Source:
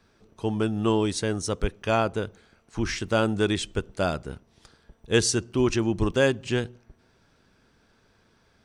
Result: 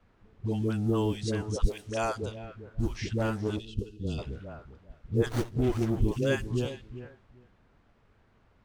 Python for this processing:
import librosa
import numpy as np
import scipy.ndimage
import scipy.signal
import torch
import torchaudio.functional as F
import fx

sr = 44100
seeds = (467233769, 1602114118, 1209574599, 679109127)

y = fx.low_shelf(x, sr, hz=140.0, db=11.0)
y = fx.echo_feedback(y, sr, ms=399, feedback_pct=17, wet_db=-13)
y = fx.filter_lfo_notch(y, sr, shape='saw_down', hz=1.6, low_hz=740.0, high_hz=4300.0, q=1.4)
y = fx.bass_treble(y, sr, bass_db=-10, treble_db=13, at=(1.67, 2.22))
y = fx.dispersion(y, sr, late='highs', ms=101.0, hz=500.0)
y = fx.power_curve(y, sr, exponent=1.4, at=(3.18, 4.05))
y = fx.dmg_noise_colour(y, sr, seeds[0], colour='white', level_db=-53.0)
y = fx.spec_box(y, sr, start_s=3.59, length_s=0.59, low_hz=500.0, high_hz=2500.0, gain_db=-20)
y = fx.env_lowpass(y, sr, base_hz=1400.0, full_db=-17.0)
y = fx.running_max(y, sr, window=17, at=(5.26, 6.02))
y = F.gain(torch.from_numpy(y), -6.5).numpy()